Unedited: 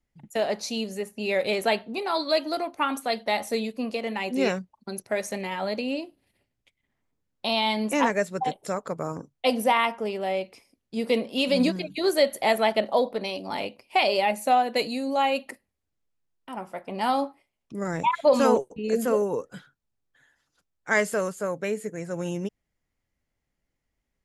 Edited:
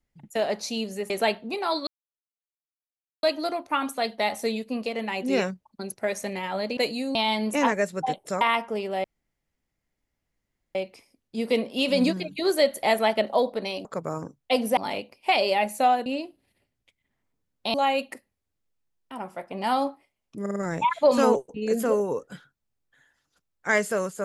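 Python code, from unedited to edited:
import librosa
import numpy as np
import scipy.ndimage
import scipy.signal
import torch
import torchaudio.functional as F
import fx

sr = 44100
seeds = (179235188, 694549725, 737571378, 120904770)

y = fx.edit(x, sr, fx.cut(start_s=1.1, length_s=0.44),
    fx.insert_silence(at_s=2.31, length_s=1.36),
    fx.swap(start_s=5.85, length_s=1.68, other_s=14.73, other_length_s=0.38),
    fx.move(start_s=8.79, length_s=0.92, to_s=13.44),
    fx.insert_room_tone(at_s=10.34, length_s=1.71),
    fx.stutter(start_s=17.78, slice_s=0.05, count=4), tone=tone)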